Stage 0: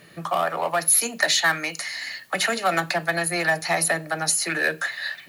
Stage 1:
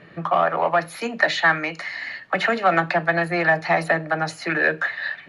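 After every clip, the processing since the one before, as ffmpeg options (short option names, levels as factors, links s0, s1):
-af "lowpass=2200,volume=1.68"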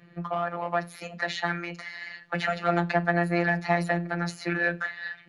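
-af "dynaudnorm=f=430:g=5:m=3.76,bass=f=250:g=6,treble=f=4000:g=2,afftfilt=real='hypot(re,im)*cos(PI*b)':imag='0':win_size=1024:overlap=0.75,volume=0.422"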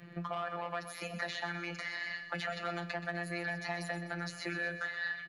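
-filter_complex "[0:a]acrossover=split=1600|3400[s0][s1][s2];[s0]acompressor=threshold=0.0112:ratio=4[s3];[s1]acompressor=threshold=0.00631:ratio=4[s4];[s2]acompressor=threshold=0.00398:ratio=4[s5];[s3][s4][s5]amix=inputs=3:normalize=0,asplit=2[s6][s7];[s7]alimiter=level_in=2.11:limit=0.0631:level=0:latency=1,volume=0.473,volume=0.944[s8];[s6][s8]amix=inputs=2:normalize=0,aecho=1:1:126|252|378|504|630|756:0.251|0.138|0.076|0.0418|0.023|0.0126,volume=0.668"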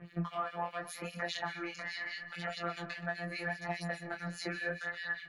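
-filter_complex "[0:a]acrossover=split=2000[s0][s1];[s0]aeval=exprs='val(0)*(1-1/2+1/2*cos(2*PI*4.9*n/s))':c=same[s2];[s1]aeval=exprs='val(0)*(1-1/2-1/2*cos(2*PI*4.9*n/s))':c=same[s3];[s2][s3]amix=inputs=2:normalize=0,flanger=delay=17:depth=5.1:speed=0.8,volume=2.37"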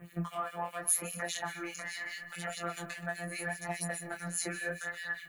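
-af "aexciter=amount=5.8:drive=8.9:freq=6900"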